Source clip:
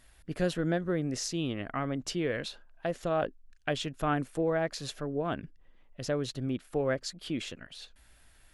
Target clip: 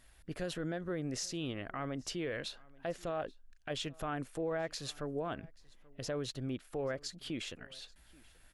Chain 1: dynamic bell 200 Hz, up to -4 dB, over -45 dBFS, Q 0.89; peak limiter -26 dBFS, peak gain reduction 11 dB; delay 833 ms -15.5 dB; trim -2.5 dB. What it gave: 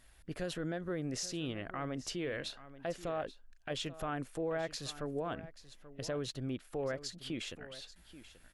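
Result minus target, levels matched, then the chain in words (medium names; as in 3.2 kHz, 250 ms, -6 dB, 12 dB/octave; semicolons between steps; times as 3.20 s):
echo-to-direct +9 dB
dynamic bell 200 Hz, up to -4 dB, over -45 dBFS, Q 0.89; peak limiter -26 dBFS, peak gain reduction 11 dB; delay 833 ms -24.5 dB; trim -2.5 dB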